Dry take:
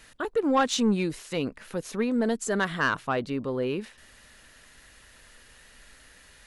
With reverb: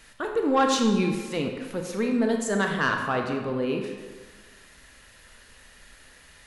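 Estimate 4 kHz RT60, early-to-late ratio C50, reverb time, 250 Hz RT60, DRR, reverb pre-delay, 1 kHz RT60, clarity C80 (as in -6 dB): 0.95 s, 4.0 dB, 1.5 s, 1.4 s, 2.5 dB, 24 ms, 1.5 s, 6.5 dB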